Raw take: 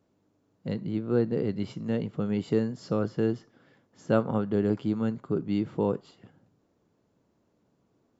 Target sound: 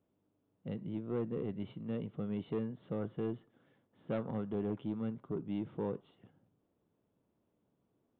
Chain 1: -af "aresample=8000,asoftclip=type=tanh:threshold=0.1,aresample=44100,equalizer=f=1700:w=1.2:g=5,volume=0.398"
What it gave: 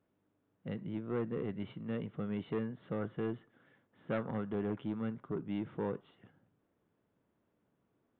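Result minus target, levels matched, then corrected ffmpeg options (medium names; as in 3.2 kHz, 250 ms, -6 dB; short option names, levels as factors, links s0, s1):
2 kHz band +7.0 dB
-af "aresample=8000,asoftclip=type=tanh:threshold=0.1,aresample=44100,equalizer=f=1700:w=1.2:g=-3.5,volume=0.398"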